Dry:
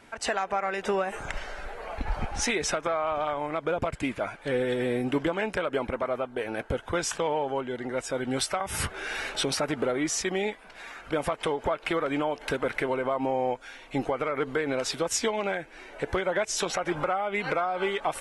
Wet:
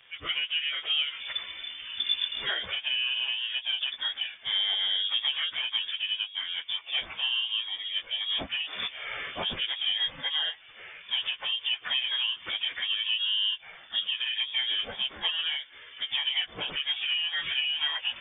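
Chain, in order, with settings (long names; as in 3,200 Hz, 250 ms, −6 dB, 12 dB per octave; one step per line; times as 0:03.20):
phase-vocoder pitch shift without resampling −4 semitones
voice inversion scrambler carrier 3,500 Hz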